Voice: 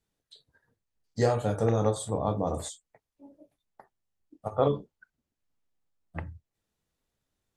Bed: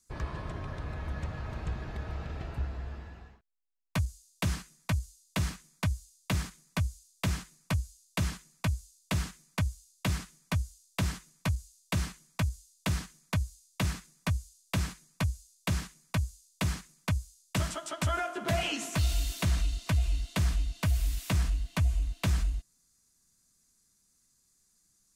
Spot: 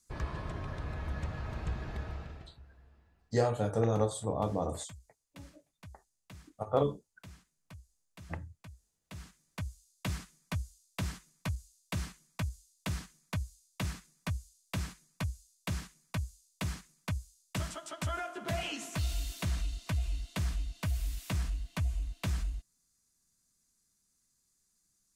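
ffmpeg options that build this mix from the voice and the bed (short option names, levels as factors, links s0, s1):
-filter_complex "[0:a]adelay=2150,volume=0.668[s0];[1:a]volume=5.62,afade=t=out:st=1.98:d=0.57:silence=0.0944061,afade=t=in:st=9:d=1.03:silence=0.158489[s1];[s0][s1]amix=inputs=2:normalize=0"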